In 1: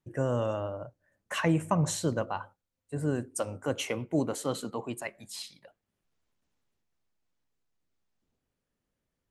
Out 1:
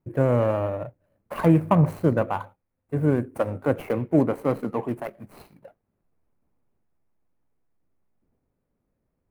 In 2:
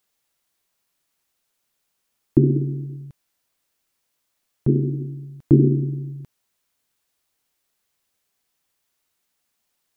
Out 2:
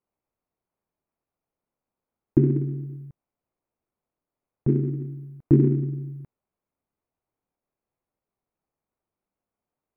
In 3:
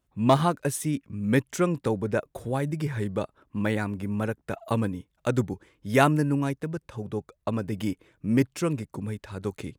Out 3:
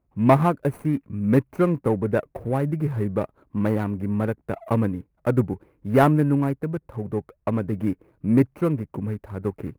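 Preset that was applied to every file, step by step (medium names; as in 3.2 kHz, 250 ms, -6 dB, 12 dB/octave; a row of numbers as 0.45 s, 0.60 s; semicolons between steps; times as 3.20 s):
median filter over 25 samples; high-order bell 4.8 kHz -12 dB; normalise loudness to -24 LUFS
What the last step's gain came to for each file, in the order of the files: +8.5 dB, -3.0 dB, +4.5 dB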